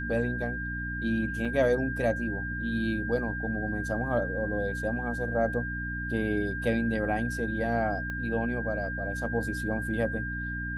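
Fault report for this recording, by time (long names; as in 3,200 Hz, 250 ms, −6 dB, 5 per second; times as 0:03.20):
mains hum 60 Hz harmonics 5 −36 dBFS
whistle 1,600 Hz −34 dBFS
0:01.45: drop-out 4.7 ms
0:08.10: click −24 dBFS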